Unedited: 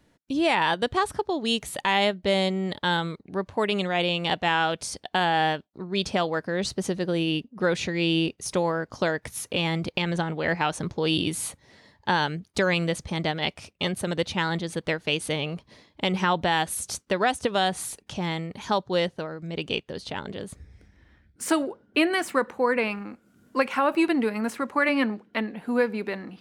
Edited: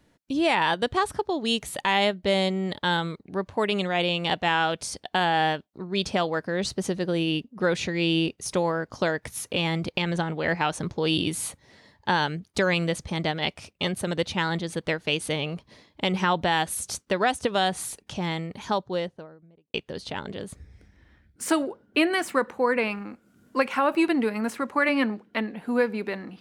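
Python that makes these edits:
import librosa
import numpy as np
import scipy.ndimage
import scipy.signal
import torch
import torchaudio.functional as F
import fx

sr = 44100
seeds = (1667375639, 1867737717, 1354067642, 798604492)

y = fx.studio_fade_out(x, sr, start_s=18.48, length_s=1.26)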